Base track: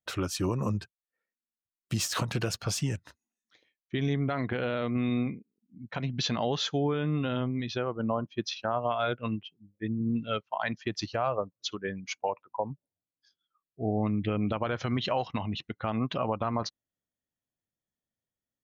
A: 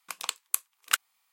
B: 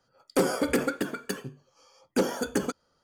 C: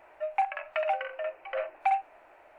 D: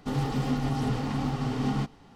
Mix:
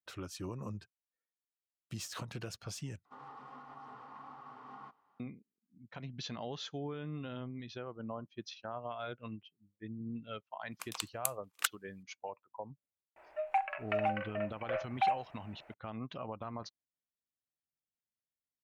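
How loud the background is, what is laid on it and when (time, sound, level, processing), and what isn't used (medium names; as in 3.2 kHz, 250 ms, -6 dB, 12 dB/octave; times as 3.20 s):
base track -12.5 dB
3.05 s: replace with D -7 dB + band-pass filter 1.1 kHz, Q 3.9
10.71 s: add A -7.5 dB + gate -55 dBFS, range -6 dB
13.16 s: add C -4 dB
not used: B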